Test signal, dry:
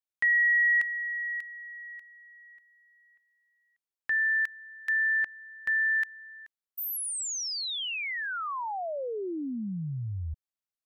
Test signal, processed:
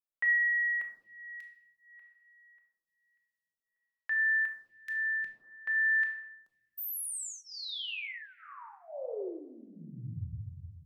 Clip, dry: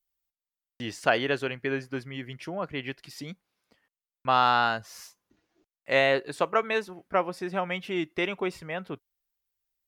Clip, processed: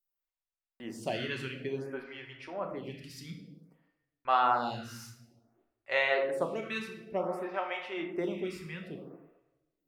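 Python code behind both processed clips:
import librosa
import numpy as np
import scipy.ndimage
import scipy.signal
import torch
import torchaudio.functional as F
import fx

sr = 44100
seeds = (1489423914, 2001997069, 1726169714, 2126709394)

y = fx.room_shoebox(x, sr, seeds[0], volume_m3=530.0, walls='mixed', distance_m=1.1)
y = fx.stagger_phaser(y, sr, hz=0.55)
y = y * 10.0 ** (-5.0 / 20.0)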